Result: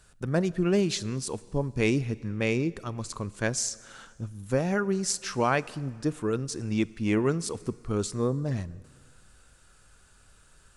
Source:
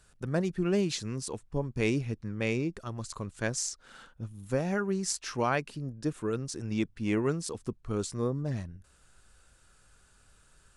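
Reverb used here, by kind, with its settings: plate-style reverb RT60 1.9 s, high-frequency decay 0.95×, DRR 19 dB; gain +3.5 dB

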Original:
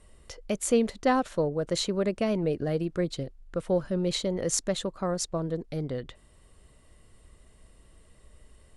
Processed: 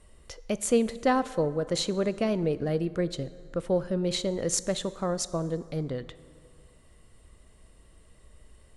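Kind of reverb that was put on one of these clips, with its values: plate-style reverb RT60 2.3 s, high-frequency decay 0.6×, DRR 15 dB

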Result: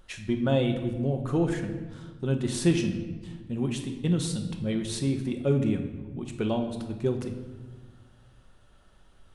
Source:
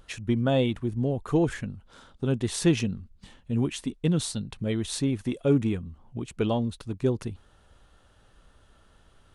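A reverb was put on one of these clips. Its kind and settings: shoebox room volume 860 m³, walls mixed, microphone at 1 m; gain -3 dB

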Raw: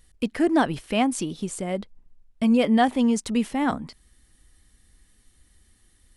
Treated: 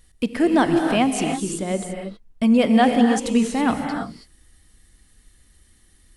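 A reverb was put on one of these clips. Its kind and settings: non-linear reverb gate 0.35 s rising, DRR 3.5 dB; gain +2.5 dB

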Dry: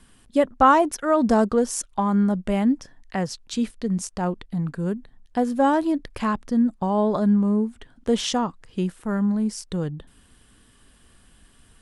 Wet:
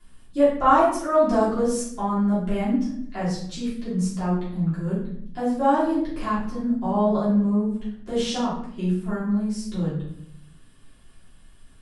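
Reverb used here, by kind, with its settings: shoebox room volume 140 m³, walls mixed, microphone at 3.1 m; gain -13 dB

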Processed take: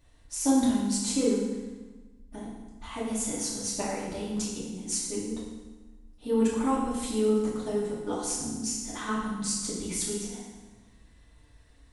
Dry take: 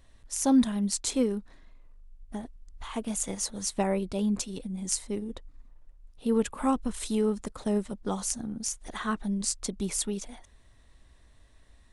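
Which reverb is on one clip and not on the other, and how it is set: FDN reverb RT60 1.2 s, low-frequency decay 1.3×, high-frequency decay 0.9×, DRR -7.5 dB; gain -7 dB

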